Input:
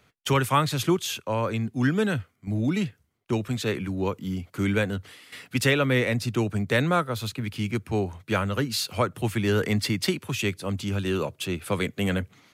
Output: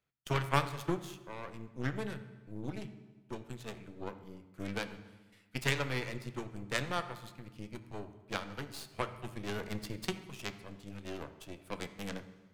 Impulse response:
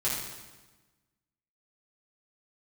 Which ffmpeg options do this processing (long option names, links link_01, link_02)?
-filter_complex "[0:a]aeval=exprs='0.398*(cos(1*acos(clip(val(0)/0.398,-1,1)))-cos(1*PI/2))+0.112*(cos(3*acos(clip(val(0)/0.398,-1,1)))-cos(3*PI/2))+0.00398*(cos(7*acos(clip(val(0)/0.398,-1,1)))-cos(7*PI/2))+0.01*(cos(8*acos(clip(val(0)/0.398,-1,1)))-cos(8*PI/2))':channel_layout=same,asplit=2[link_01][link_02];[1:a]atrim=start_sample=2205,highshelf=frequency=5000:gain=-9,adelay=6[link_03];[link_02][link_03]afir=irnorm=-1:irlink=0,volume=-15.5dB[link_04];[link_01][link_04]amix=inputs=2:normalize=0,volume=-3.5dB"